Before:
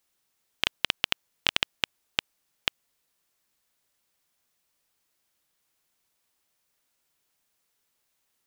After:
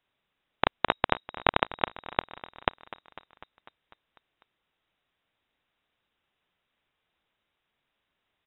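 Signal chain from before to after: frequency-shifting echo 0.249 s, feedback 65%, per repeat -31 Hz, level -17 dB; inverted band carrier 3800 Hz; gain +2 dB

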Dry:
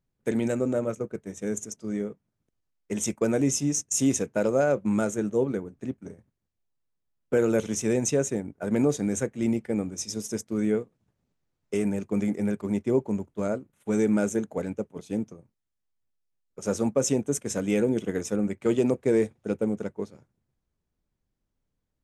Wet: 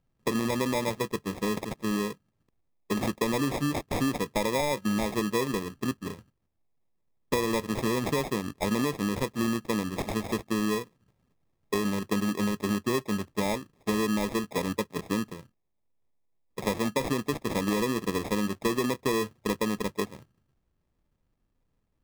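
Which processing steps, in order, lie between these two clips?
high shelf 10000 Hz -9.5 dB; compressor, threshold -30 dBFS, peak gain reduction 12 dB; sample-and-hold 30×; gain +5.5 dB

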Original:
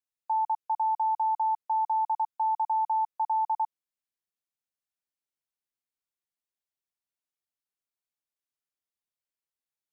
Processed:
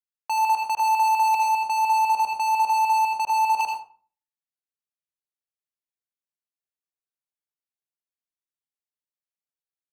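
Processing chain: 1.34–3.61 LPF 1000 Hz 12 dB/oct; sample leveller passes 5; reverb RT60 0.45 s, pre-delay 73 ms, DRR 2 dB

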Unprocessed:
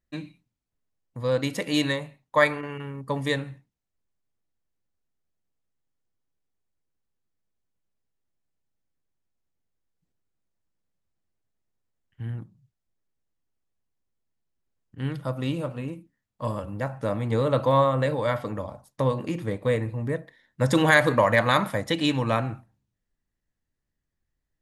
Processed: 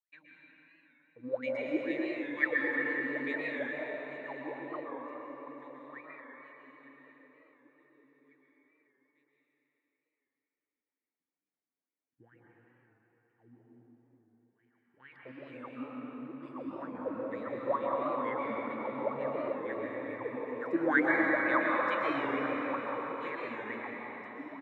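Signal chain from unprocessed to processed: feedback echo 1.177 s, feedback 40%, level -5.5 dB; wah 2.2 Hz 250–2400 Hz, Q 13; reverb RT60 4.3 s, pre-delay 0.114 s, DRR -4 dB; record warp 45 rpm, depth 100 cents

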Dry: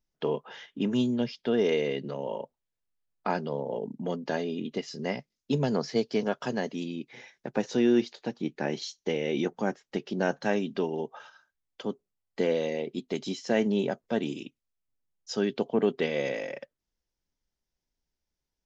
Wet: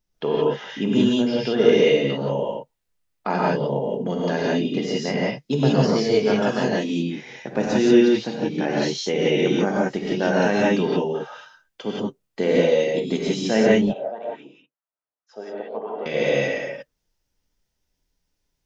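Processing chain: 13.74–16.06 wah 4.7 Hz 600–1500 Hz, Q 4.3; non-linear reverb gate 0.2 s rising, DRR -5 dB; gain +3.5 dB

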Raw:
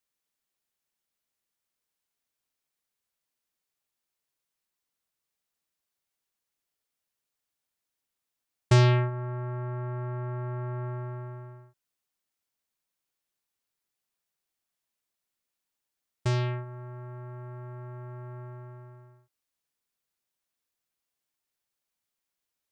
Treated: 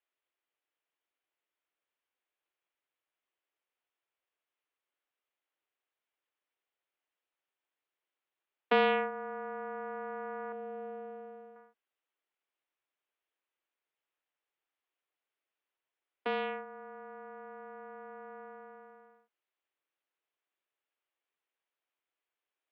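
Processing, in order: 10.52–11.56 band shelf 1300 Hz -10.5 dB; mistuned SSB +95 Hz 210–3200 Hz

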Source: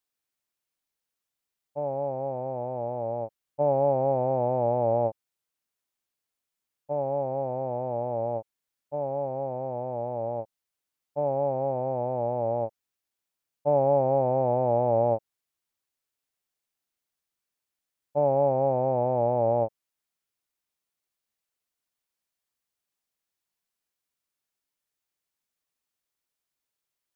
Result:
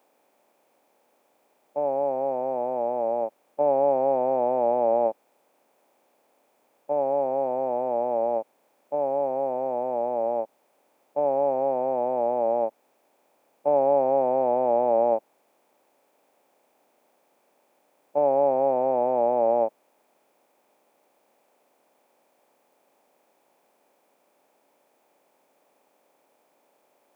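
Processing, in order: per-bin compression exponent 0.6; HPF 220 Hz 24 dB/oct; high shelf 2000 Hz +9 dB

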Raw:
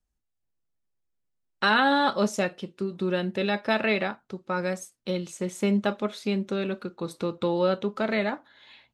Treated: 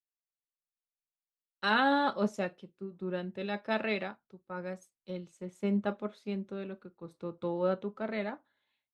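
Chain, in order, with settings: high shelf 2700 Hz -9 dB; three-band expander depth 100%; gain -7.5 dB

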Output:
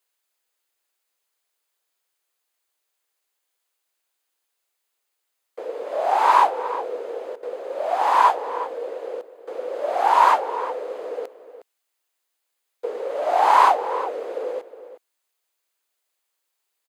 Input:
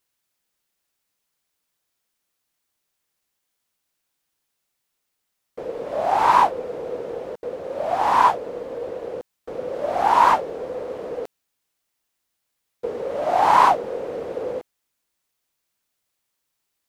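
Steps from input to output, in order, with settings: HPF 370 Hz 24 dB/oct; notch 5600 Hz, Q 12; outdoor echo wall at 62 m, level -13 dB

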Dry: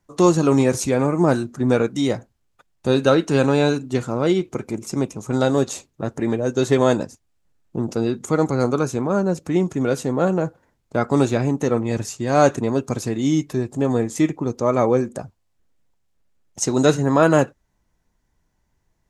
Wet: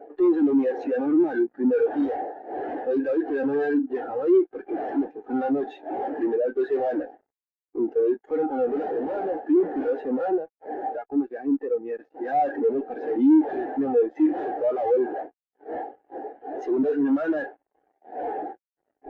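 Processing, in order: wind noise 490 Hz -30 dBFS; tilt +3.5 dB/oct; 10.36–12.25 compressor 10:1, threshold -30 dBFS, peak gain reduction 14.5 dB; speaker cabinet 280–3100 Hz, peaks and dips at 290 Hz +7 dB, 450 Hz +4 dB, 780 Hz +10 dB, 1100 Hz -8 dB, 1700 Hz +9 dB, 2500 Hz -3 dB; fuzz box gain 38 dB, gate -44 dBFS; spectral expander 2.5:1

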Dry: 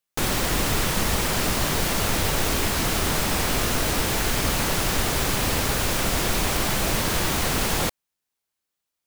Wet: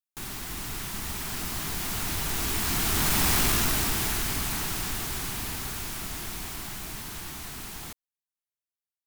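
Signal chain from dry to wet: Doppler pass-by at 3.34, 11 m/s, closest 3.2 m; in parallel at +1 dB: compressor, threshold -34 dBFS, peak gain reduction 13.5 dB; on the sum: bell 530 Hz -14 dB 0.42 oct; soft clip -18.5 dBFS, distortion -16 dB; high shelf 9100 Hz +7 dB

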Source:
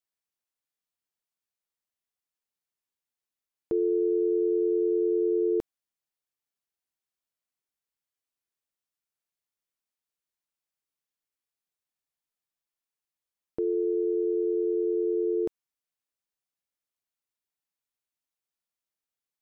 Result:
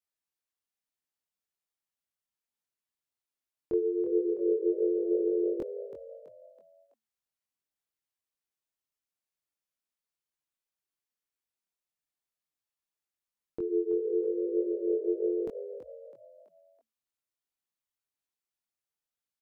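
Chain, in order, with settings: chorus voices 2, 0.96 Hz, delay 22 ms, depth 3 ms; frequency-shifting echo 0.328 s, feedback 43%, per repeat +55 Hz, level -11 dB

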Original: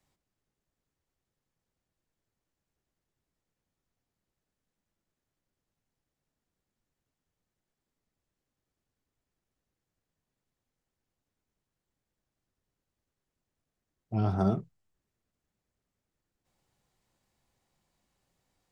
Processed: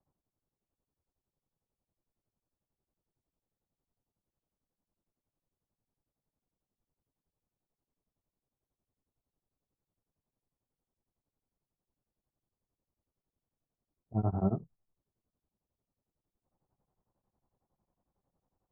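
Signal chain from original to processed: LPF 1100 Hz 24 dB/oct; beating tremolo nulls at 11 Hz

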